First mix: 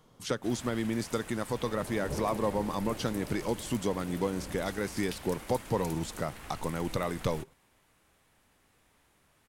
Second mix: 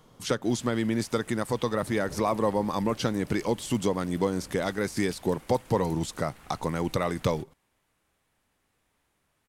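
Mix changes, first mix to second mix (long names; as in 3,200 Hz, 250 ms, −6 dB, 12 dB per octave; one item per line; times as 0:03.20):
speech +4.5 dB
background −6.5 dB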